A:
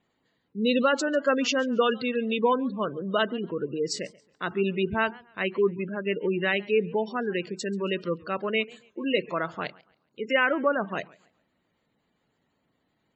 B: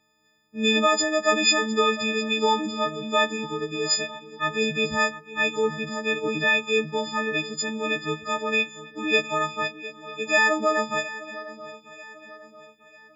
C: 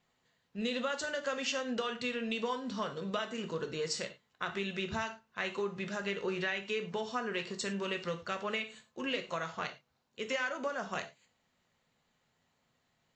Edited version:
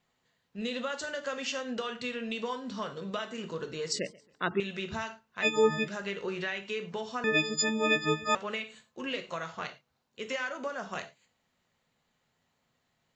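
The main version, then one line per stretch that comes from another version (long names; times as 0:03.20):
C
0:03.92–0:04.60: punch in from A
0:05.44–0:05.86: punch in from B, crossfade 0.06 s
0:07.24–0:08.35: punch in from B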